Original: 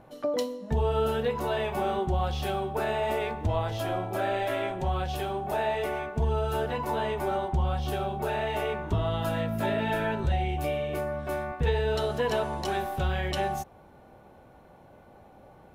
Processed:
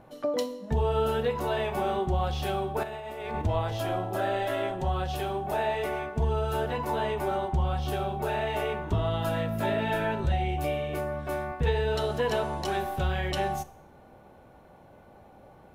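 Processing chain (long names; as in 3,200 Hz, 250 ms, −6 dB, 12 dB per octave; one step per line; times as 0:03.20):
0:02.83–0:03.42: compressor whose output falls as the input rises −36 dBFS, ratio −1
0:03.96–0:05.11: notch filter 2,300 Hz, Q 8.3
four-comb reverb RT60 0.65 s, combs from 27 ms, DRR 16.5 dB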